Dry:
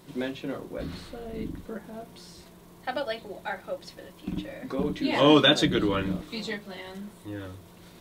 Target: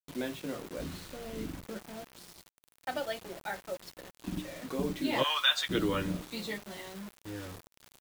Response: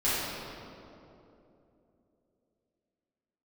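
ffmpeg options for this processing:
-filter_complex "[0:a]asplit=3[a][b][c];[a]afade=t=out:st=5.22:d=0.02[d];[b]highpass=f=1k:w=0.5412,highpass=f=1k:w=1.3066,afade=t=in:st=5.22:d=0.02,afade=t=out:st=5.69:d=0.02[e];[c]afade=t=in:st=5.69:d=0.02[f];[d][e][f]amix=inputs=3:normalize=0,acrusher=bits=6:mix=0:aa=0.000001,volume=-4.5dB"

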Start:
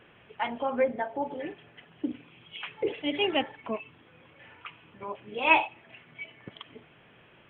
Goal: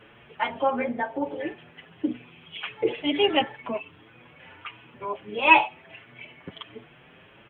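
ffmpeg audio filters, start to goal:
-filter_complex "[0:a]asplit=2[a][b];[b]adelay=7,afreqshift=1.5[c];[a][c]amix=inputs=2:normalize=1,volume=7.5dB"

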